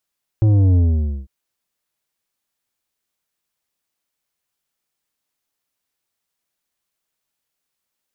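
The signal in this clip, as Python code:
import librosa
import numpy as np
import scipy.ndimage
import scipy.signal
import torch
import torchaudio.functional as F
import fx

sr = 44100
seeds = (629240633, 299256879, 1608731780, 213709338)

y = fx.sub_drop(sr, level_db=-11.5, start_hz=110.0, length_s=0.85, drive_db=9, fade_s=0.51, end_hz=65.0)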